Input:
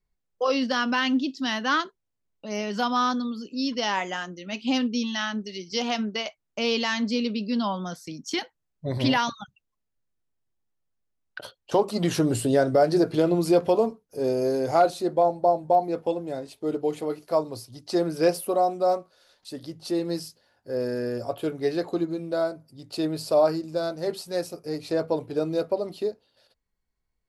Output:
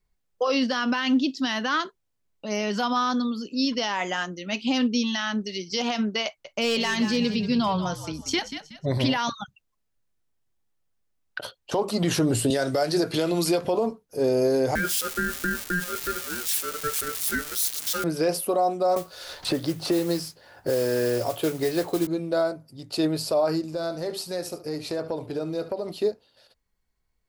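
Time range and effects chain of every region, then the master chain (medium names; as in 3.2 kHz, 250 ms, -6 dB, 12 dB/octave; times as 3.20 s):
6.26–8.86 s: hard clipper -17.5 dBFS + frequency-shifting echo 185 ms, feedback 32%, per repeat -55 Hz, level -11.5 dB
12.50–13.65 s: tilt shelf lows -5.5 dB, about 1.5 kHz + three bands compressed up and down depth 70%
14.75–18.04 s: zero-crossing glitches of -19 dBFS + high-pass 470 Hz 24 dB/octave + ring modulator 890 Hz
18.96–22.07 s: band-stop 230 Hz, Q 5.5 + modulation noise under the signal 18 dB + three bands compressed up and down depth 100%
23.62–25.91 s: compression 3:1, threshold -31 dBFS + delay 72 ms -13.5 dB
whole clip: bass shelf 400 Hz -5 dB; peak limiter -20.5 dBFS; bass shelf 190 Hz +4.5 dB; trim +5 dB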